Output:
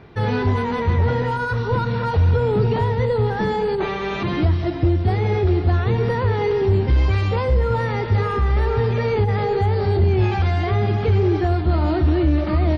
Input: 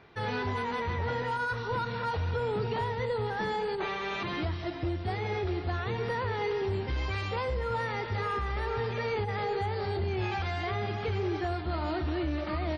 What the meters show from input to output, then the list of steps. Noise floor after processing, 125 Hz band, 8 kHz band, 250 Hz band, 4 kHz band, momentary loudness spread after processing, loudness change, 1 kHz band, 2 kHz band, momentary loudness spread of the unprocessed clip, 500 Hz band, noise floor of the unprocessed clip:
-25 dBFS, +16.0 dB, n/a, +13.0 dB, +5.0 dB, 4 LU, +12.0 dB, +7.5 dB, +6.0 dB, 2 LU, +11.0 dB, -36 dBFS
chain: low shelf 470 Hz +11.5 dB; gain +5 dB

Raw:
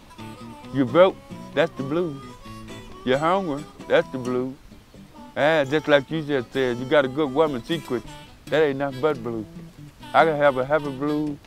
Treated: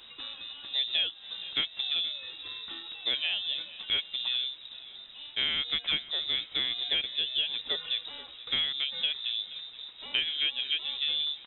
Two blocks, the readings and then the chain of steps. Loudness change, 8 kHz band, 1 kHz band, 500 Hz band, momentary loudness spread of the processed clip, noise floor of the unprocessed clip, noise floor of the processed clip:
-7.0 dB, n/a, -25.0 dB, -30.5 dB, 12 LU, -49 dBFS, -50 dBFS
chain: compressor 6:1, threshold -23 dBFS, peak gain reduction 13.5 dB; on a send: feedback echo 0.475 s, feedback 38%, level -18 dB; on the sum: inverted band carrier 3800 Hz; gain -3.5 dB

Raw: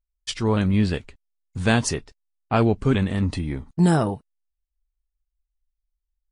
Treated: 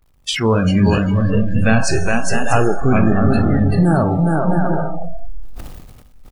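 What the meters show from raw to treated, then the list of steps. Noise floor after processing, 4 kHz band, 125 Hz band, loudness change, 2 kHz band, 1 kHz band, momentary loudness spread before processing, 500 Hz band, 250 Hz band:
-46 dBFS, +6.0 dB, +7.5 dB, +6.5 dB, +8.5 dB, +8.5 dB, 12 LU, +8.0 dB, +7.5 dB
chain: zero-crossing step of -29 dBFS; tone controls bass -2 dB, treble -6 dB; bouncing-ball echo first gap 0.4 s, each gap 0.6×, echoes 5; compressor 2.5:1, threshold -21 dBFS, peak gain reduction 6 dB; vibrato 0.91 Hz 72 cents; buzz 50 Hz, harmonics 27, -52 dBFS -3 dB/oct; Schroeder reverb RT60 2.4 s, combs from 28 ms, DRR 5.5 dB; spectral noise reduction 27 dB; sustainer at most 38 dB/s; gain +8 dB

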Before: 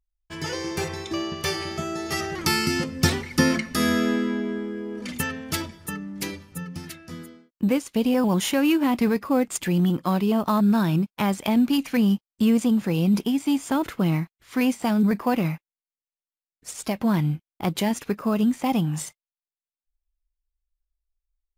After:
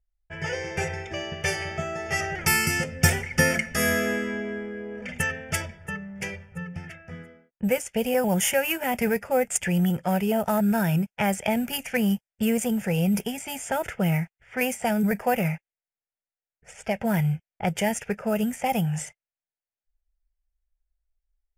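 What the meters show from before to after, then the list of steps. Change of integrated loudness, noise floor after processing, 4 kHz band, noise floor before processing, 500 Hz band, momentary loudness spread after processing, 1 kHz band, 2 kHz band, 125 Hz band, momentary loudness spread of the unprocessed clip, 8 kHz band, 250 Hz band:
-2.0 dB, under -85 dBFS, -3.0 dB, under -85 dBFS, +1.0 dB, 12 LU, -0.5 dB, +4.0 dB, -0.5 dB, 13 LU, +3.0 dB, -5.0 dB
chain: high shelf 4100 Hz +6.5 dB; low-pass opened by the level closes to 1700 Hz, open at -17.5 dBFS; fixed phaser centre 1100 Hz, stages 6; gain +3.5 dB

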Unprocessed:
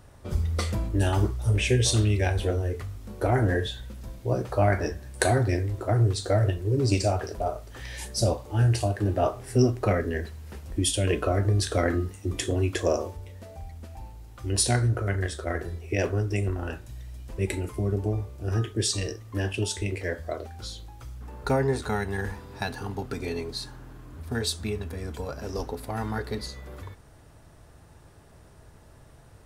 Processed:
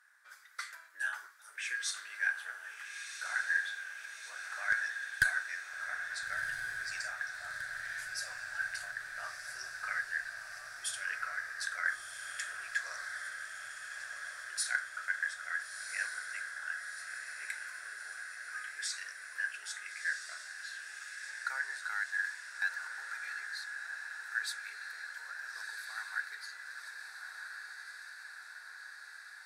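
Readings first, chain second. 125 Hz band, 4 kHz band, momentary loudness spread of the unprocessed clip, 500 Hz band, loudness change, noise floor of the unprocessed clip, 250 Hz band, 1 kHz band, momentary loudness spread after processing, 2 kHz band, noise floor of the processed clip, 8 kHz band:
under -40 dB, -10.0 dB, 16 LU, -33.5 dB, -11.0 dB, -52 dBFS, under -40 dB, -12.5 dB, 11 LU, +3.5 dB, -51 dBFS, -9.0 dB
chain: ladder high-pass 1500 Hz, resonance 80%; one-sided clip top -21 dBFS, bottom -16 dBFS; bell 2900 Hz -9 dB 0.41 oct; on a send: diffused feedback echo 1.373 s, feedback 71%, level -6 dB; on the sum: gain +1.5 dB

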